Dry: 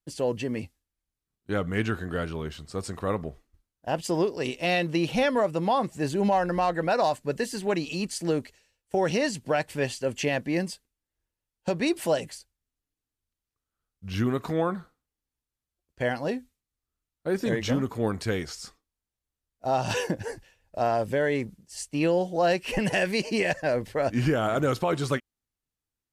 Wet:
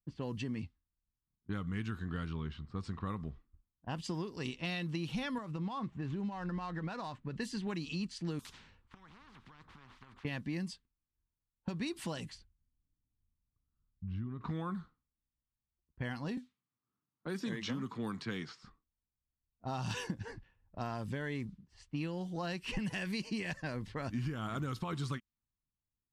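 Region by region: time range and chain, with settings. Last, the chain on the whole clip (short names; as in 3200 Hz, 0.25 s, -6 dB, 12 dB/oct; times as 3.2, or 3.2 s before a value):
5.38–7.34 median filter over 9 samples + compressor 5:1, threshold -27 dBFS
8.39–10.25 compressor 10:1, threshold -36 dBFS + spectral compressor 10:1
12.35–14.41 low shelf 330 Hz +9.5 dB + compressor 3:1, threshold -39 dBFS
16.37–18.63 HPF 120 Hz 24 dB/oct + low shelf 160 Hz -9 dB + three-band squash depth 40%
whole clip: low-pass opened by the level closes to 1000 Hz, open at -23 dBFS; EQ curve 210 Hz 0 dB, 610 Hz -17 dB, 1100 Hz -2 dB, 1500 Hz -6 dB, 2500 Hz -6 dB, 3600 Hz -2 dB, 6800 Hz -6 dB; compressor, threshold -33 dBFS; gain -1 dB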